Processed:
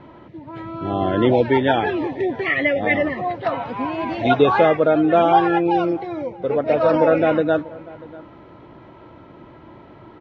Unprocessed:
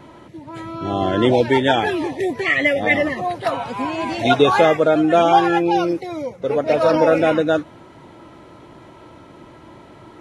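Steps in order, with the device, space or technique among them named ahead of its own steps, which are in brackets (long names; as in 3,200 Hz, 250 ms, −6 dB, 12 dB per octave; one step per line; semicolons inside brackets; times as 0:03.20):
shout across a valley (high-frequency loss of the air 280 metres; slap from a distant wall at 110 metres, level −21 dB)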